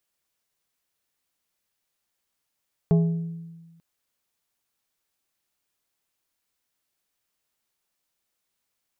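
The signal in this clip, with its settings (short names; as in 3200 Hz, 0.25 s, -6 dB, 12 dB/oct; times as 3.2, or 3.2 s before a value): glass hit plate, lowest mode 166 Hz, decay 1.37 s, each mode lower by 8.5 dB, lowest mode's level -14 dB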